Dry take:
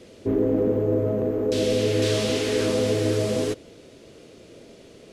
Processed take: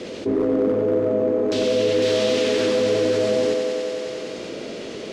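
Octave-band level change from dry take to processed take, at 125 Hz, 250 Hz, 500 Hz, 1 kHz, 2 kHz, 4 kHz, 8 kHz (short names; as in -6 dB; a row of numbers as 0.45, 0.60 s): -7.0, +1.5, +4.5, +4.5, +3.5, +3.0, -0.5 dB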